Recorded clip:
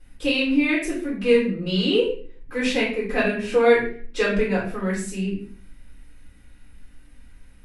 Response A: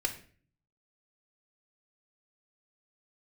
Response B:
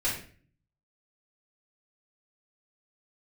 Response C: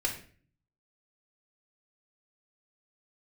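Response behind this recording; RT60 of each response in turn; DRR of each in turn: B; 0.45 s, 0.45 s, 0.45 s; 5.5 dB, -6.5 dB, 1.5 dB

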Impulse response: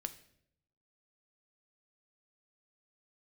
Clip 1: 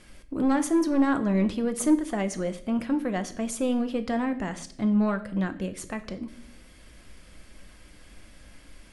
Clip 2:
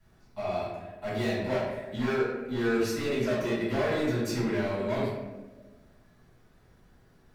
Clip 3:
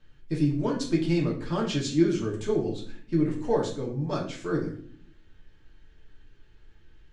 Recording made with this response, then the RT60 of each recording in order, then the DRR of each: 1; 0.70 s, 1.2 s, 0.55 s; 9.0 dB, -12.5 dB, -3.0 dB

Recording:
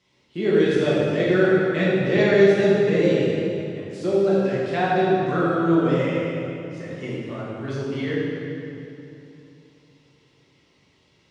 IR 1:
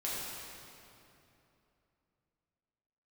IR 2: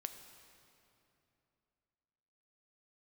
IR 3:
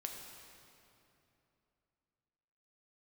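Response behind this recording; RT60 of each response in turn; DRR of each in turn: 1; 2.9 s, 2.9 s, 2.9 s; -8.0 dB, 7.0 dB, 1.5 dB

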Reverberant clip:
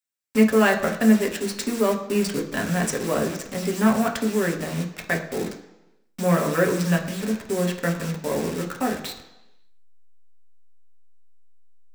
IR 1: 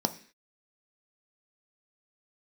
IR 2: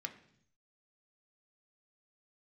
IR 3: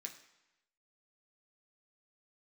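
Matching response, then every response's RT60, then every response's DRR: 3; 0.45 s, 0.65 s, 0.95 s; 8.0 dB, 4.5 dB, 1.5 dB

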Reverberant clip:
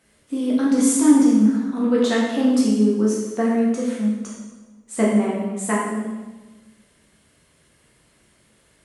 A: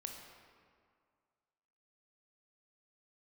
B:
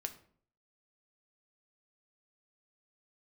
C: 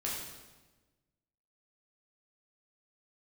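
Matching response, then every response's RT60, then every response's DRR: C; 2.1 s, 0.55 s, 1.2 s; 2.0 dB, 6.5 dB, -5.5 dB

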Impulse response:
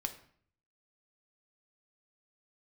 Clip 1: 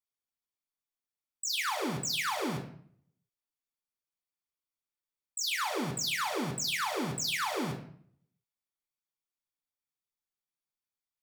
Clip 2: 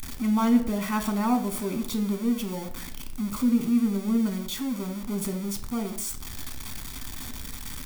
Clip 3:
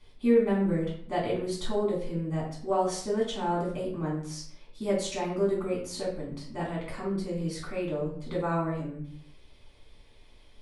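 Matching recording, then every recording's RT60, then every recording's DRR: 2; 0.55 s, 0.55 s, 0.55 s; 2.0 dB, 6.5 dB, -6.0 dB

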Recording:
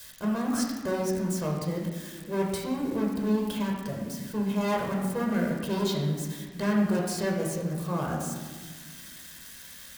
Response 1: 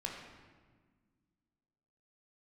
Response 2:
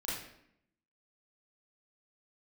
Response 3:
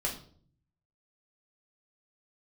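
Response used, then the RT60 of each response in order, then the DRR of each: 1; 1.5 s, 0.75 s, 0.50 s; -1.0 dB, -8.0 dB, -2.0 dB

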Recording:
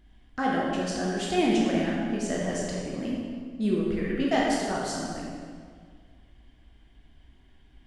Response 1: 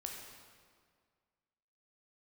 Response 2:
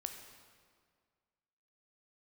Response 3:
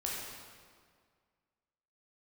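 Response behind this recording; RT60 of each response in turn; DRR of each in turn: 3; 1.9 s, 1.9 s, 1.9 s; 0.0 dB, 5.0 dB, -4.5 dB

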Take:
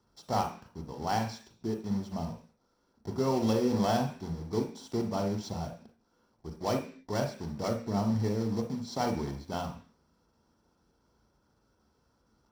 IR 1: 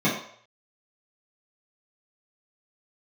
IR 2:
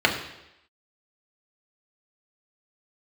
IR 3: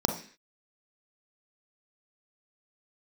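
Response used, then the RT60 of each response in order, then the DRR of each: 3; 0.60 s, 0.85 s, 0.45 s; -10.5 dB, -0.5 dB, 4.5 dB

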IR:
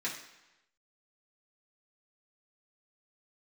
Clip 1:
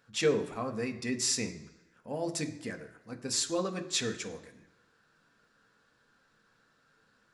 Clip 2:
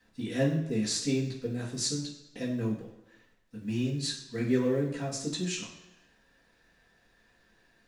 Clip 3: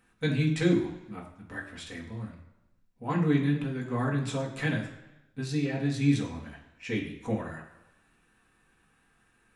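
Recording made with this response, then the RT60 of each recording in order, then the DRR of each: 2; 1.0 s, 1.0 s, 1.0 s; 5.0 dB, -7.0 dB, -3.0 dB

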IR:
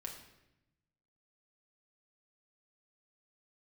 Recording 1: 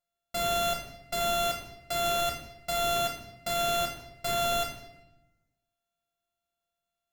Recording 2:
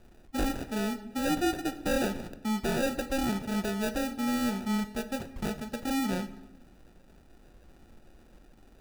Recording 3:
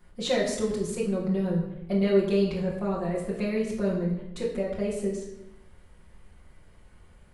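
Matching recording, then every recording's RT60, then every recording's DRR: 1; 0.90 s, 0.90 s, 0.90 s; -0.5 dB, 8.5 dB, -5.5 dB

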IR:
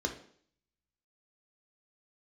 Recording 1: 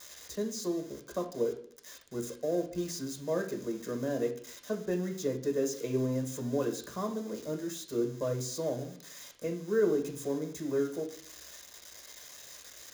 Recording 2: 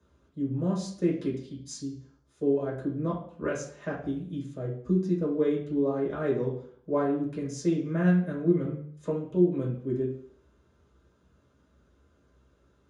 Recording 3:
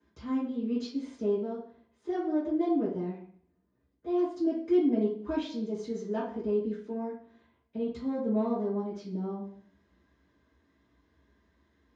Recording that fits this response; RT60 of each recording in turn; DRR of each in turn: 1; 0.55 s, 0.55 s, 0.55 s; 3.0 dB, -5.5 dB, -13.0 dB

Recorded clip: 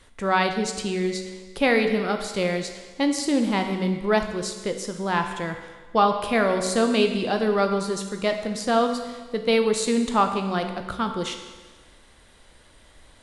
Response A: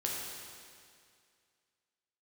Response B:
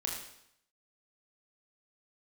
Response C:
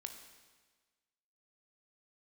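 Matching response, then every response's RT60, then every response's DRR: C; 2.2 s, 0.75 s, 1.4 s; -3.5 dB, -1.5 dB, 5.5 dB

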